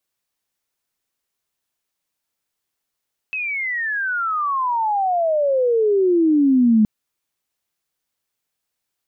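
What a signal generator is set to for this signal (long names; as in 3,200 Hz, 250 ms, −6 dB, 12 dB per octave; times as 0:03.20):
glide logarithmic 2,600 Hz → 210 Hz −22 dBFS → −10.5 dBFS 3.52 s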